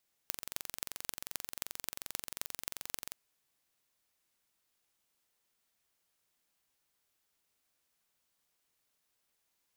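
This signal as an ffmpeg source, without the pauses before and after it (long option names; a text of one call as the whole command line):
ffmpeg -f lavfi -i "aevalsrc='0.447*eq(mod(n,1943),0)*(0.5+0.5*eq(mod(n,11658),0))':duration=2.85:sample_rate=44100" out.wav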